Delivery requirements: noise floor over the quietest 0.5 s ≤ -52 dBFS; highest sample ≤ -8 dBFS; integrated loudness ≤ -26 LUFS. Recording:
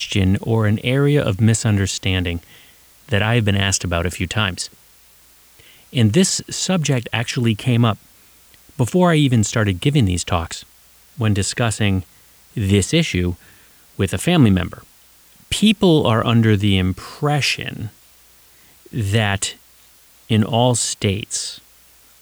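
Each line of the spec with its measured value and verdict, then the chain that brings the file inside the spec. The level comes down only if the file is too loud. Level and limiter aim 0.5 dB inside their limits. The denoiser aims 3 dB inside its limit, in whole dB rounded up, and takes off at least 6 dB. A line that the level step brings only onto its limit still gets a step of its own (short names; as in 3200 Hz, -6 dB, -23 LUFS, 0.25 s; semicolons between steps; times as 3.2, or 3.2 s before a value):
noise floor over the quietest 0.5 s -50 dBFS: fail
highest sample -2.5 dBFS: fail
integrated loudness -18.0 LUFS: fail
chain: gain -8.5 dB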